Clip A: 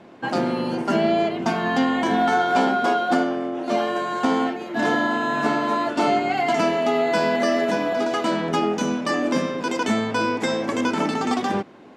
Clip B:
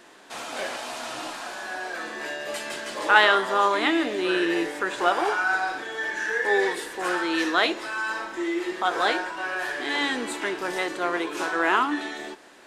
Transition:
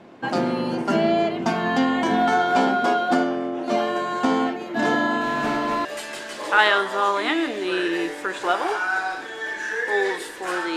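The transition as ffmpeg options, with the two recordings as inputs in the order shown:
-filter_complex "[0:a]asettb=1/sr,asplit=3[s0][s1][s2];[s0]atrim=end=5.214[s3];[s1]atrim=start=5.21:end=5.85,asetpts=PTS-STARTPTS,afade=t=in:d=0.004:c=qsin,afade=t=out:st=0.636:d=0.004:c=qsin,volume=9.44,asoftclip=hard,volume=0.106[s4];[s2]atrim=start=5.846[s5];[s3][s4]acrossfade=d=0.004:c1=hsin:c2=qsin[s6];[s6][s5]acrossfade=d=0.004:c1=qsin:c2=hsin,apad=whole_dur=10.76,atrim=end=10.76,atrim=end=5.852[s7];[1:a]atrim=start=2.418:end=7.33[s8];[s7][s8]acrossfade=d=0.004:c1=hsin:c2=hsin"

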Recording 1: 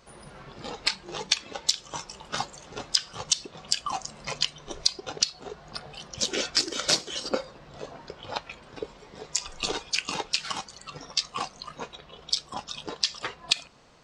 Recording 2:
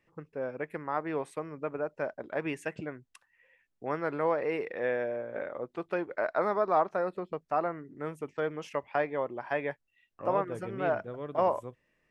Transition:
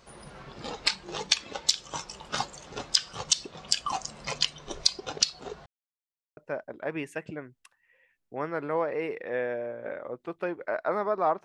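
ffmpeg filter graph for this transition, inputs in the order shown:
-filter_complex "[0:a]apad=whole_dur=11.44,atrim=end=11.44,asplit=2[s0][s1];[s0]atrim=end=5.66,asetpts=PTS-STARTPTS,afade=t=out:st=5.656:d=0.004:c=hsin[s2];[s1]atrim=start=5.66:end=6.37,asetpts=PTS-STARTPTS,volume=0[s3];[1:a]atrim=start=1.87:end=6.94,asetpts=PTS-STARTPTS,afade=t=in:d=0.004:c=hsin[s4];[s2][s3][s4]concat=n=3:v=0:a=1"

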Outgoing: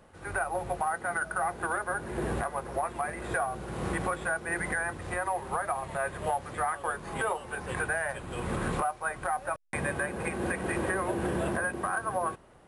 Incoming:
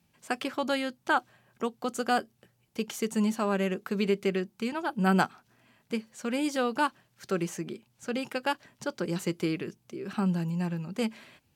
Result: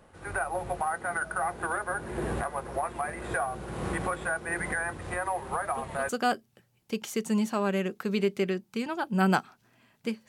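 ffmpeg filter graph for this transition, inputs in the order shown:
-filter_complex "[1:a]asplit=2[s0][s1];[0:a]apad=whole_dur=10.28,atrim=end=10.28,atrim=end=6.092[s2];[s1]atrim=start=1.948:end=6.14[s3];[s0]atrim=start=1.5:end=1.95,asetpts=PTS-STARTPTS,volume=0.282,afade=t=in:d=0.004:c=hsin,afade=t=out:st=0.446:d=0.004:c=hsin,adelay=5640[s4];[s2][s3]acrossfade=d=0.004:c1=hsin:c2=hsin[s5];[s5][s4]amix=inputs=2:normalize=0"

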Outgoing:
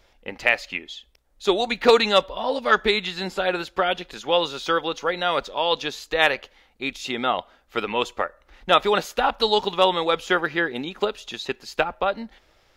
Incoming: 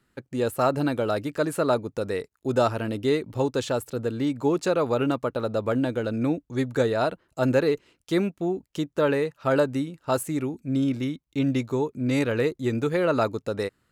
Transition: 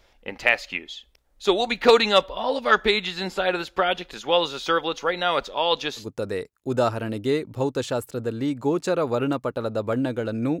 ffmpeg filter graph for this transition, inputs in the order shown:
-filter_complex "[0:a]apad=whole_dur=10.6,atrim=end=10.6,atrim=end=6.08,asetpts=PTS-STARTPTS[s0];[1:a]atrim=start=1.75:end=6.39,asetpts=PTS-STARTPTS[s1];[s0][s1]acrossfade=d=0.12:c1=tri:c2=tri"

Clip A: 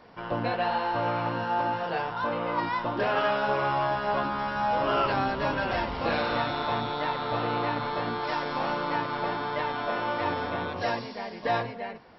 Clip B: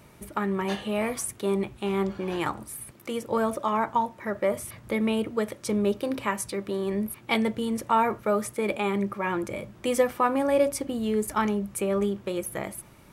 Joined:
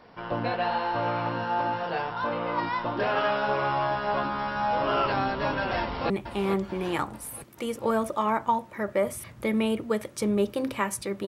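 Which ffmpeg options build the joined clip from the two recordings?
-filter_complex "[0:a]apad=whole_dur=11.27,atrim=end=11.27,atrim=end=6.102[s0];[1:a]atrim=start=1.568:end=6.74[s1];[s0][s1]acrossfade=d=0.004:c1=hsin:c2=hsin,asplit=2[s2][s3];[s3]afade=t=in:st=5.81:d=0.01,afade=t=out:st=6.1:d=0.01,aecho=0:1:440|880|1320|1760|2200|2640|3080:0.375837|0.206711|0.113691|0.0625299|0.0343915|0.0189153|0.0104034[s4];[s2][s4]amix=inputs=2:normalize=0"

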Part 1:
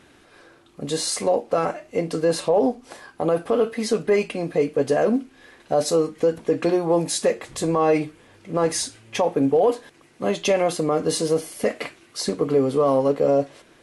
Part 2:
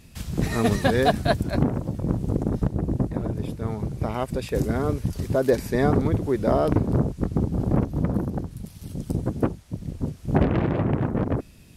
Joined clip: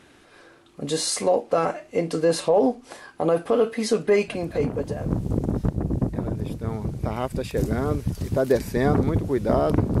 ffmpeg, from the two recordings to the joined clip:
-filter_complex "[0:a]apad=whole_dur=10,atrim=end=10,atrim=end=5.16,asetpts=PTS-STARTPTS[s0];[1:a]atrim=start=1.22:end=6.98,asetpts=PTS-STARTPTS[s1];[s0][s1]acrossfade=d=0.92:c1=tri:c2=tri"

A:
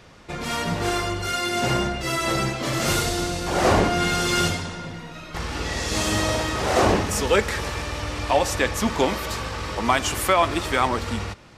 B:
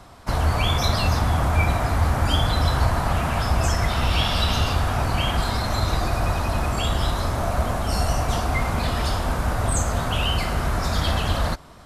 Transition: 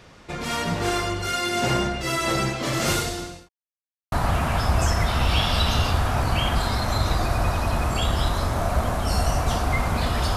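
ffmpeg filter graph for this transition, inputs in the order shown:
-filter_complex "[0:a]apad=whole_dur=10.36,atrim=end=10.36,asplit=2[s0][s1];[s0]atrim=end=3.49,asetpts=PTS-STARTPTS,afade=t=out:st=2.88:d=0.61[s2];[s1]atrim=start=3.49:end=4.12,asetpts=PTS-STARTPTS,volume=0[s3];[1:a]atrim=start=2.94:end=9.18,asetpts=PTS-STARTPTS,afade=t=in:d=0.004:c=hsin[s4];[s2][s3][s4]concat=n=3:v=0:a=1"

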